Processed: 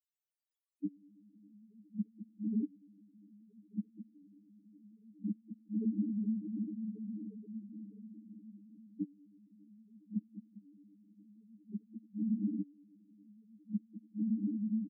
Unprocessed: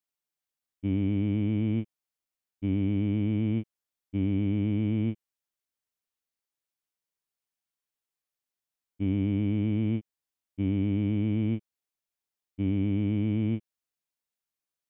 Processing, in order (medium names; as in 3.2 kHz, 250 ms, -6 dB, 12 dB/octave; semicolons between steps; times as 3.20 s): high-pass 350 Hz 12 dB/octave; comb 4.4 ms, depth 89%; echo that smears into a reverb 486 ms, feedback 61%, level -3 dB; inverted gate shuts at -27 dBFS, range -35 dB; loudest bins only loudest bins 2; trim +9.5 dB